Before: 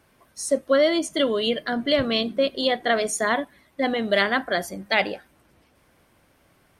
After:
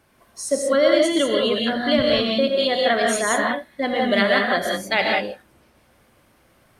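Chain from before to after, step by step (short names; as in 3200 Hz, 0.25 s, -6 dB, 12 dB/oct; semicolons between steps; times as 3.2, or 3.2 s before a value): non-linear reverb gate 0.21 s rising, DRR -0.5 dB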